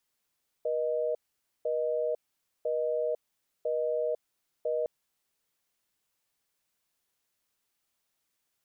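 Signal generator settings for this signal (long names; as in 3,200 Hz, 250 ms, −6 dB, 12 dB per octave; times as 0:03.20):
call progress tone busy tone, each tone −29.5 dBFS 4.21 s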